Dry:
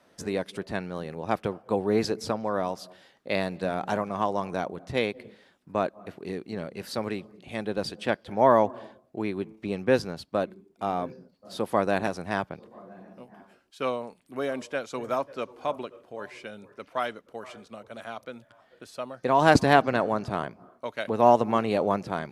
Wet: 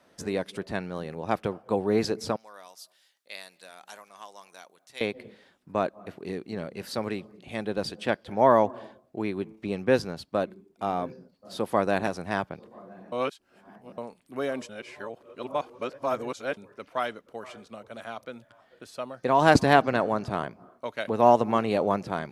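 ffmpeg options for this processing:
-filter_complex "[0:a]asettb=1/sr,asplit=3[a][b][c];[a]atrim=end=2.364[d];[b]atrim=start=2.36:end=5.01,asetpts=PTS-STARTPTS,afade=t=in:d=0.004:c=qsin,afade=t=out:st=2.646:d=0.004:c=qsin,aderivative[e];[c]atrim=start=5.006[f];[d][e]acrossfade=d=0.004:c1=hsin:c2=qsin[g];[g][f]acrossfade=d=0.004:c1=qsin:c2=hsin,asplit=5[h][i][j][k][l];[h]atrim=end=13.122[m];[i]atrim=start=13.118:end=13.982,asetpts=PTS-STARTPTS,areverse[n];[j]atrim=start=13.978:end=14.692[o];[k]atrim=start=14.688:end=16.572,asetpts=PTS-STARTPTS,areverse[p];[l]atrim=start=16.568[q];[m][n]acrossfade=d=0.004:c1=hsin:c2=hsin[r];[r][o]acrossfade=d=0.004:c1=hsin:c2=hsin[s];[s][p]acrossfade=d=0.004:c1=hsin:c2=hsin[t];[t][q]acrossfade=d=0.004:c1=hsin:c2=hsin"

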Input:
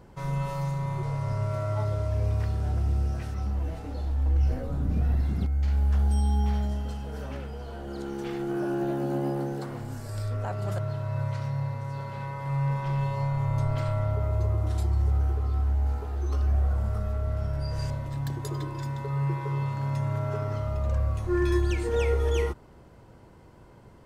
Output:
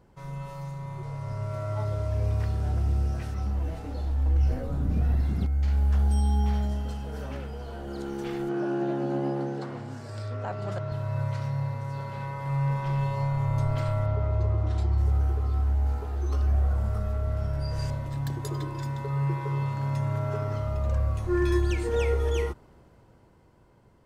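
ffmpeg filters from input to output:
-filter_complex "[0:a]asettb=1/sr,asplit=3[a][b][c];[a]atrim=end=8.494[d];[b]atrim=start=8.49:end=10.92,asetpts=PTS-STARTPTS,afade=t=in:d=0.004:c=qsin,afade=t=out:st=2.426:d=0.004:c=qsin,highpass=120,lowpass=5.7k[e];[c]atrim=start=10.916[f];[d][e]acrossfade=d=0.004:c1=hsin:c2=qsin[g];[g][f]acrossfade=d=0.004:c1=qsin:c2=hsin,asettb=1/sr,asplit=3[h][i][j];[h]atrim=end=14.064[k];[i]atrim=start=14.06:end=14.98,asetpts=PTS-STARTPTS,afade=t=in:d=0.004:c=qsin,afade=t=out:st=0.916:d=0.004:c=qsin,lowpass=5k[l];[j]atrim=start=14.976[m];[k][l]acrossfade=d=0.004:c1=hsin:c2=qsin[n];[n][m]acrossfade=d=0.004:c1=qsin:c2=hsin,dynaudnorm=f=190:g=17:m=8dB,volume=-7.5dB"

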